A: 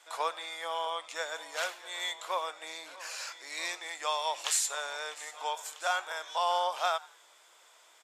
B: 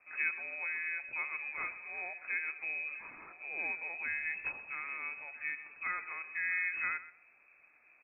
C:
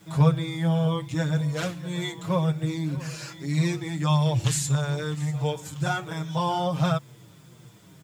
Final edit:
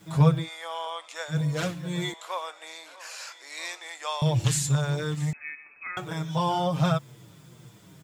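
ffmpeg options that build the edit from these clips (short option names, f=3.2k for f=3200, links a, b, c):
-filter_complex "[0:a]asplit=2[a][b];[2:a]asplit=4[c][d][e][f];[c]atrim=end=0.49[g];[a]atrim=start=0.39:end=1.38[h];[d]atrim=start=1.28:end=2.142[i];[b]atrim=start=2.138:end=4.222[j];[e]atrim=start=4.218:end=5.332[k];[1:a]atrim=start=5.328:end=5.972[l];[f]atrim=start=5.968[m];[g][h]acrossfade=d=0.1:c1=tri:c2=tri[n];[n][i]acrossfade=d=0.1:c1=tri:c2=tri[o];[o][j]acrossfade=d=0.004:c1=hsin:c2=hsin[p];[p][k]acrossfade=d=0.004:c1=hsin:c2=hsin[q];[q][l]acrossfade=d=0.004:c1=hsin:c2=hsin[r];[r][m]acrossfade=d=0.004:c1=hsin:c2=hsin"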